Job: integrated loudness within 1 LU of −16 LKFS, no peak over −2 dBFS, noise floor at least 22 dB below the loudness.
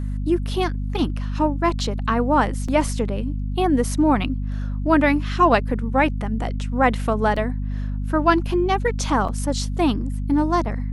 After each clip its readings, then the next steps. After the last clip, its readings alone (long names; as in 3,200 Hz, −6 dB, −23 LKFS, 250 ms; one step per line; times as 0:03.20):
number of dropouts 3; longest dropout 5.3 ms; mains hum 50 Hz; hum harmonics up to 250 Hz; level of the hum −23 dBFS; integrated loudness −21.5 LKFS; sample peak −3.0 dBFS; target loudness −16.0 LKFS
→ repair the gap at 0:02.68/0:07.36/0:09.28, 5.3 ms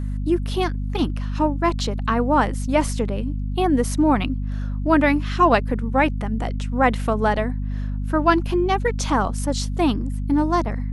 number of dropouts 0; mains hum 50 Hz; hum harmonics up to 250 Hz; level of the hum −23 dBFS
→ hum removal 50 Hz, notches 5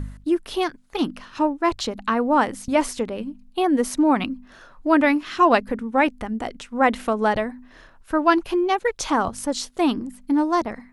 mains hum none found; integrated loudness −22.5 LKFS; sample peak −4.0 dBFS; target loudness −16.0 LKFS
→ level +6.5 dB
brickwall limiter −2 dBFS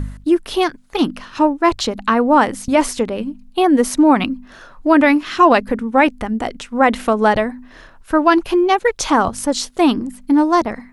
integrated loudness −16.5 LKFS; sample peak −2.0 dBFS; background noise floor −44 dBFS